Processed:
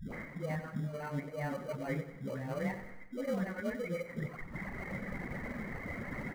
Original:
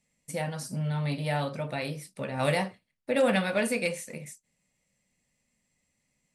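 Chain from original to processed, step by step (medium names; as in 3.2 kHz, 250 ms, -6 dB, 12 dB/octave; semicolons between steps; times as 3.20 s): one-bit delta coder 64 kbps, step -39.5 dBFS; Chebyshev low-pass 2.2 kHz, order 8; hum notches 50/100/150 Hz; reverb removal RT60 1.4 s; dynamic bell 910 Hz, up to -6 dB, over -43 dBFS, Q 0.86; reverse; compression 6:1, threshold -50 dBFS, peak gain reduction 23.5 dB; reverse; phase dispersion highs, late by 127 ms, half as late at 400 Hz; in parallel at -10 dB: sample-and-hold 25×; on the sum: feedback delay 93 ms, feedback 51%, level -12 dB; trim +12 dB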